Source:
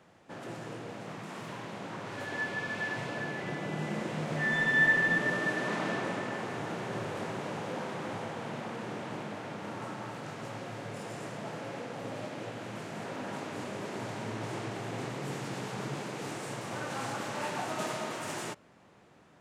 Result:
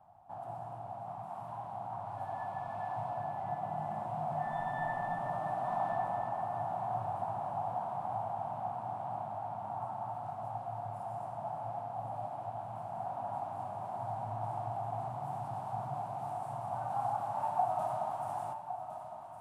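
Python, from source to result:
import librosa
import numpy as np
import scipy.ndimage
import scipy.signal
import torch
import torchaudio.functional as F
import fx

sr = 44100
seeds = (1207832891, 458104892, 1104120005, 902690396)

p1 = fx.curve_eq(x, sr, hz=(110.0, 160.0, 480.0, 730.0, 1900.0, 3100.0, 6700.0, 9700.0), db=(0, -9, -24, 11, -23, -21, -24, -12))
y = p1 + fx.echo_single(p1, sr, ms=1110, db=-9.5, dry=0)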